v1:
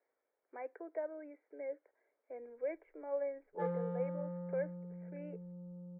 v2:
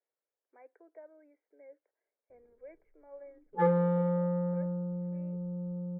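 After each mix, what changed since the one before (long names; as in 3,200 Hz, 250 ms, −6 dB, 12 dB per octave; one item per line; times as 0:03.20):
speech −11.5 dB
background +12.0 dB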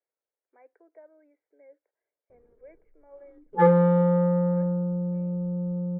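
background +8.0 dB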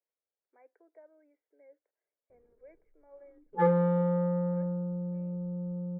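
speech −4.5 dB
background −6.5 dB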